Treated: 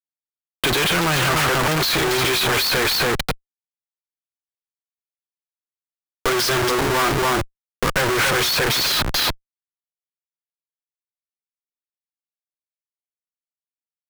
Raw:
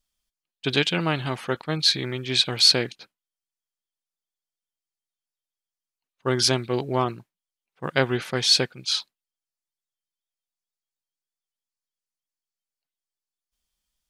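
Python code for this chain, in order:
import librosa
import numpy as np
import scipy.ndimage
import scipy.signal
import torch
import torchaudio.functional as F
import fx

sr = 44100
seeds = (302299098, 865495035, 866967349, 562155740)

y = scipy.signal.sosfilt(scipy.signal.butter(2, 170.0, 'highpass', fs=sr, output='sos'), x)
y = fx.peak_eq(y, sr, hz=220.0, db=-14.5, octaves=0.5)
y = fx.fuzz(y, sr, gain_db=40.0, gate_db=-43.0)
y = y + 10.0 ** (-9.0 / 20.0) * np.pad(y, (int(282 * sr / 1000.0), 0))[:len(y)]
y = fx.schmitt(y, sr, flips_db=-27.5)
y = fx.peak_eq(y, sr, hz=1400.0, db=5.0, octaves=1.5)
y = fx.band_squash(y, sr, depth_pct=40)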